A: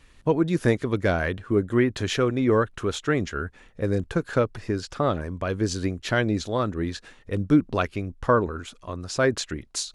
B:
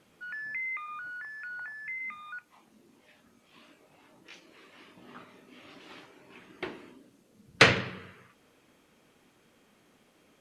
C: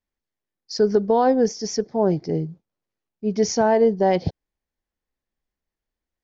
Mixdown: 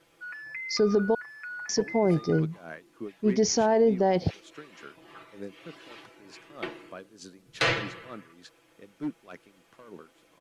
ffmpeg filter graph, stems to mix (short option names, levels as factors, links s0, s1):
-filter_complex "[0:a]highpass=f=160:w=0.5412,highpass=f=160:w=1.3066,volume=4.47,asoftclip=hard,volume=0.224,aeval=exprs='val(0)*pow(10,-20*(0.5-0.5*cos(2*PI*3.3*n/s))/20)':c=same,adelay=1500,volume=0.237[s0];[1:a]equalizer=f=190:w=3:g=-15,aecho=1:1:6:0.99,volume=0.891[s1];[2:a]volume=1,asplit=3[s2][s3][s4];[s2]atrim=end=1.15,asetpts=PTS-STARTPTS,afade=t=out:st=1.146:d=0.004:c=hsin[s5];[s3]atrim=start=1.15:end=1.69,asetpts=PTS-STARTPTS,volume=0[s6];[s4]atrim=start=1.69,asetpts=PTS-STARTPTS,afade=t=in:d=0.004:c=hsin[s7];[s5][s6][s7]concat=n=3:v=0:a=1[s8];[s0][s1][s8]amix=inputs=3:normalize=0,alimiter=limit=0.2:level=0:latency=1:release=38"